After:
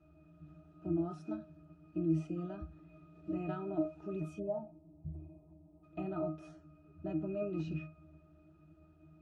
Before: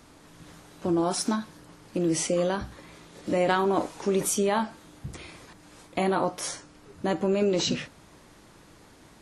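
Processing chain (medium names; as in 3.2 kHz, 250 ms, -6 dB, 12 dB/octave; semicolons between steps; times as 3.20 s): pitch-class resonator D#, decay 0.29 s; time-frequency box 4.39–5.83 s, 1.1–8.1 kHz -23 dB; trim +4.5 dB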